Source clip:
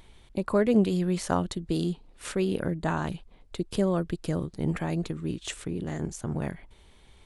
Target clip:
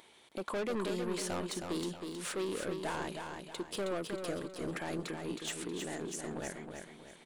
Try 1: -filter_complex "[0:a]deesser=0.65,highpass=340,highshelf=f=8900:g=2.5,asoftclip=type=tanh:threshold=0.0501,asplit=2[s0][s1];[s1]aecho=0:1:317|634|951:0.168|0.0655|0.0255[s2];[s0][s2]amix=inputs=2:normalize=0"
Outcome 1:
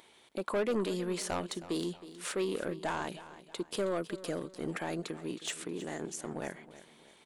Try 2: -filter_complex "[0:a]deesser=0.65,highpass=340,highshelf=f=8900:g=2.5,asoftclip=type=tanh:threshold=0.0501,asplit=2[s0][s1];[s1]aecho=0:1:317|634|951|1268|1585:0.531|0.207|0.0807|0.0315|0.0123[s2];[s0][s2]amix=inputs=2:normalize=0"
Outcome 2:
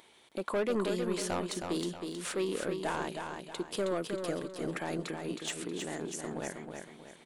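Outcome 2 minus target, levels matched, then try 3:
saturation: distortion -4 dB
-filter_complex "[0:a]deesser=0.65,highpass=340,highshelf=f=8900:g=2.5,asoftclip=type=tanh:threshold=0.0237,asplit=2[s0][s1];[s1]aecho=0:1:317|634|951|1268|1585:0.531|0.207|0.0807|0.0315|0.0123[s2];[s0][s2]amix=inputs=2:normalize=0"

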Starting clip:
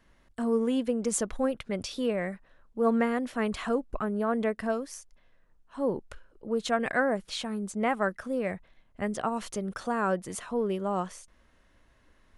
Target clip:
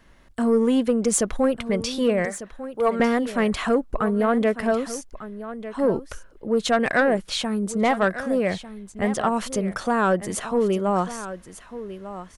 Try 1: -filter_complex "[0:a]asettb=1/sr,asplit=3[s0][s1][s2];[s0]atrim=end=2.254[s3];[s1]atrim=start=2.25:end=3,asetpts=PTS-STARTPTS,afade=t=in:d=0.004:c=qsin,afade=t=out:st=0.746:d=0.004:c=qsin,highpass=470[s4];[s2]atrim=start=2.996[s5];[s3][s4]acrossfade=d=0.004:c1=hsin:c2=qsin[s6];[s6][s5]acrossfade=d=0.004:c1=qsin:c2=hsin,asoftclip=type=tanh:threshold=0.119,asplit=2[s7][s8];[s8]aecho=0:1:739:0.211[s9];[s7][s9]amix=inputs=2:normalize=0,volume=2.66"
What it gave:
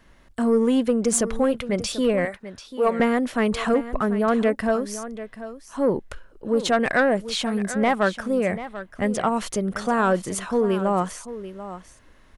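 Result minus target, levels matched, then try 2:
echo 459 ms early
-filter_complex "[0:a]asettb=1/sr,asplit=3[s0][s1][s2];[s0]atrim=end=2.254[s3];[s1]atrim=start=2.25:end=3,asetpts=PTS-STARTPTS,afade=t=in:d=0.004:c=qsin,afade=t=out:st=0.746:d=0.004:c=qsin,highpass=470[s4];[s2]atrim=start=2.996[s5];[s3][s4]acrossfade=d=0.004:c1=hsin:c2=qsin[s6];[s6][s5]acrossfade=d=0.004:c1=qsin:c2=hsin,asoftclip=type=tanh:threshold=0.119,asplit=2[s7][s8];[s8]aecho=0:1:1198:0.211[s9];[s7][s9]amix=inputs=2:normalize=0,volume=2.66"

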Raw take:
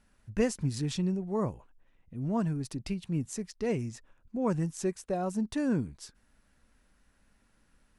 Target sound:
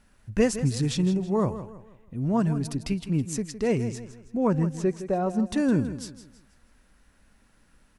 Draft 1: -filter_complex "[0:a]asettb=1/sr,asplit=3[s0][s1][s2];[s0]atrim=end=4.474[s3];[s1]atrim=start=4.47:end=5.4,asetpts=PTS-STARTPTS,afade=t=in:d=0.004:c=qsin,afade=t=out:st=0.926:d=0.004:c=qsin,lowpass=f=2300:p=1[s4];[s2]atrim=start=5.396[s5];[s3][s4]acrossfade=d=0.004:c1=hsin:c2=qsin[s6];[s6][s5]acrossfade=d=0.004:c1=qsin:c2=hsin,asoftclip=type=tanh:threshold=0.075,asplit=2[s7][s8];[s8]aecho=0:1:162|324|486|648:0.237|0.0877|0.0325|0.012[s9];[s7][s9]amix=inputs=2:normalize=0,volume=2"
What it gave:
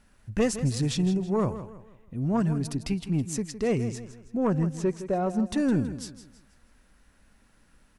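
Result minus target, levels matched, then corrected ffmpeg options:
saturation: distortion +18 dB
-filter_complex "[0:a]asettb=1/sr,asplit=3[s0][s1][s2];[s0]atrim=end=4.474[s3];[s1]atrim=start=4.47:end=5.4,asetpts=PTS-STARTPTS,afade=t=in:d=0.004:c=qsin,afade=t=out:st=0.926:d=0.004:c=qsin,lowpass=f=2300:p=1[s4];[s2]atrim=start=5.396[s5];[s3][s4]acrossfade=d=0.004:c1=hsin:c2=qsin[s6];[s6][s5]acrossfade=d=0.004:c1=qsin:c2=hsin,asoftclip=type=tanh:threshold=0.266,asplit=2[s7][s8];[s8]aecho=0:1:162|324|486|648:0.237|0.0877|0.0325|0.012[s9];[s7][s9]amix=inputs=2:normalize=0,volume=2"

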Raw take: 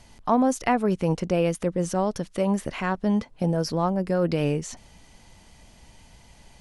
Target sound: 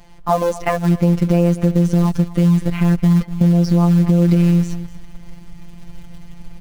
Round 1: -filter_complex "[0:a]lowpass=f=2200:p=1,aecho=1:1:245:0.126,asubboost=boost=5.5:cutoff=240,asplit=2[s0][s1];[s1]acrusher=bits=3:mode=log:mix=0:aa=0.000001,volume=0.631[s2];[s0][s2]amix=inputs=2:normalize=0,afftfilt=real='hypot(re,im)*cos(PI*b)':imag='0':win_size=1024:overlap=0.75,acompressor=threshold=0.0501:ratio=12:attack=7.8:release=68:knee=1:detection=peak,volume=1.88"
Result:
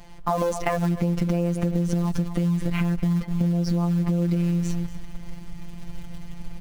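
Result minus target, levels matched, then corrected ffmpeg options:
compression: peak gain reduction +9.5 dB
-filter_complex "[0:a]lowpass=f=2200:p=1,aecho=1:1:245:0.126,asubboost=boost=5.5:cutoff=240,asplit=2[s0][s1];[s1]acrusher=bits=3:mode=log:mix=0:aa=0.000001,volume=0.631[s2];[s0][s2]amix=inputs=2:normalize=0,afftfilt=real='hypot(re,im)*cos(PI*b)':imag='0':win_size=1024:overlap=0.75,acompressor=threshold=0.168:ratio=12:attack=7.8:release=68:knee=1:detection=peak,volume=1.88"

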